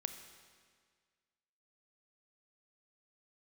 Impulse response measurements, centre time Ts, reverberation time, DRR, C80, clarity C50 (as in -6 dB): 23 ms, 1.8 s, 8.0 dB, 10.0 dB, 8.5 dB